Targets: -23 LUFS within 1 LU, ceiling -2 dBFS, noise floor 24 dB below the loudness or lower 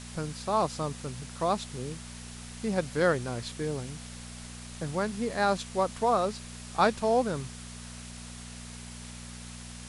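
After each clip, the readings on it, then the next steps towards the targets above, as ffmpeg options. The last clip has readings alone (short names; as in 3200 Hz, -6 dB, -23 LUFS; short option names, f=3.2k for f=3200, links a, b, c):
hum 60 Hz; harmonics up to 240 Hz; hum level -43 dBFS; noise floor -44 dBFS; noise floor target -54 dBFS; loudness -30.0 LUFS; peak -10.0 dBFS; loudness target -23.0 LUFS
-> -af "bandreject=f=60:t=h:w=4,bandreject=f=120:t=h:w=4,bandreject=f=180:t=h:w=4,bandreject=f=240:t=h:w=4"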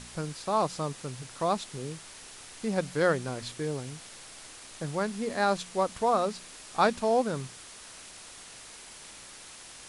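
hum none; noise floor -48 dBFS; noise floor target -54 dBFS
-> -af "afftdn=nr=6:nf=-48"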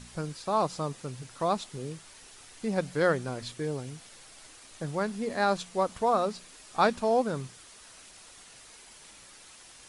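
noise floor -52 dBFS; noise floor target -54 dBFS
-> -af "afftdn=nr=6:nf=-52"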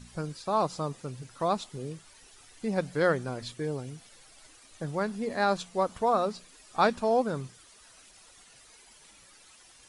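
noise floor -56 dBFS; loudness -30.5 LUFS; peak -10.0 dBFS; loudness target -23.0 LUFS
-> -af "volume=7.5dB"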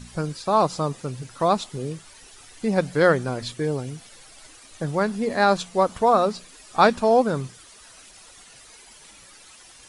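loudness -23.0 LUFS; peak -2.5 dBFS; noise floor -49 dBFS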